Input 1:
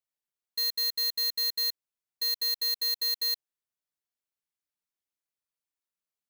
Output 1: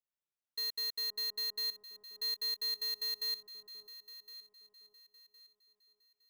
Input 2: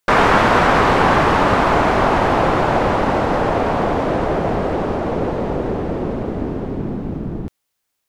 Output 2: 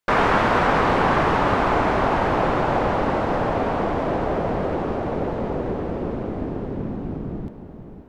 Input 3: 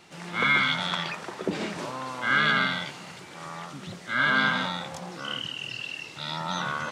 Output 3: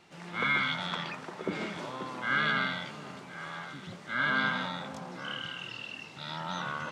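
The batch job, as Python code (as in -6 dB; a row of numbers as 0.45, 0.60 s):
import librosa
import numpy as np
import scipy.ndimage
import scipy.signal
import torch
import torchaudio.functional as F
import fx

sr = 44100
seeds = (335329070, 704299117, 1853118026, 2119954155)

y = fx.high_shelf(x, sr, hz=5300.0, db=-7.0)
y = fx.echo_alternate(y, sr, ms=531, hz=970.0, feedback_pct=56, wet_db=-10.0)
y = y * librosa.db_to_amplitude(-5.0)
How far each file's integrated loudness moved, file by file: -7.5, -5.0, -6.0 LU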